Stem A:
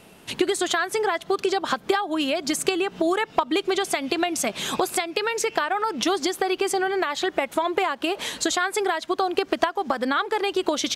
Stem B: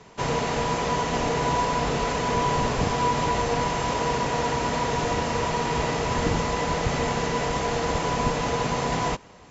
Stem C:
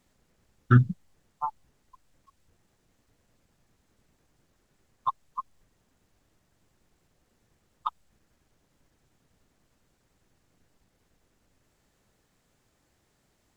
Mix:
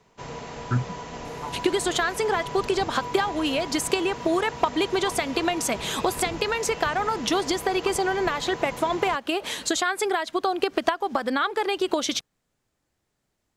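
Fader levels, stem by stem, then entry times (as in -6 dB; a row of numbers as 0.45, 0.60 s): -1.0, -11.5, -6.5 dB; 1.25, 0.00, 0.00 s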